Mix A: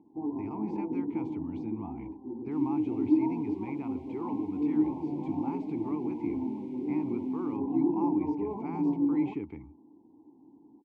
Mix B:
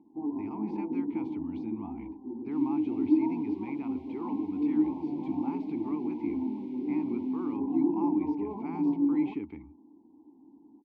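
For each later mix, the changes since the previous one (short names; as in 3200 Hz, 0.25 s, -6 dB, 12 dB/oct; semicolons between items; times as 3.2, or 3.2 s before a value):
master: add ten-band EQ 125 Hz -8 dB, 250 Hz +4 dB, 500 Hz -5 dB, 4000 Hz +5 dB, 8000 Hz -8 dB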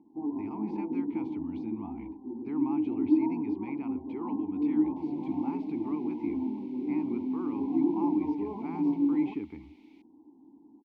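second sound: entry +2.45 s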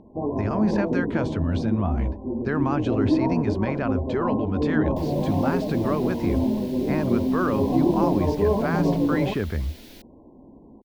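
master: remove vowel filter u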